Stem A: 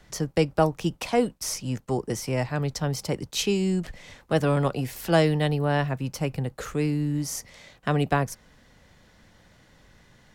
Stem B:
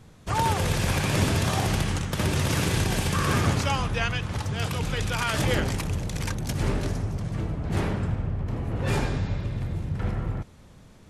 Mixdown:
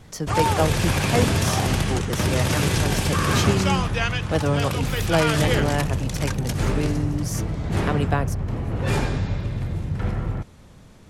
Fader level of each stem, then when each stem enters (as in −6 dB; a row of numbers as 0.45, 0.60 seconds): −0.5, +3.0 decibels; 0.00, 0.00 seconds